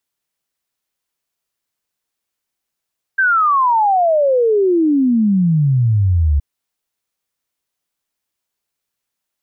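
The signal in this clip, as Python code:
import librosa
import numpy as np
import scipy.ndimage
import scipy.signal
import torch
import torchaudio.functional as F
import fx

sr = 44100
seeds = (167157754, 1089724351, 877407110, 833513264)

y = fx.ess(sr, length_s=3.22, from_hz=1600.0, to_hz=69.0, level_db=-10.5)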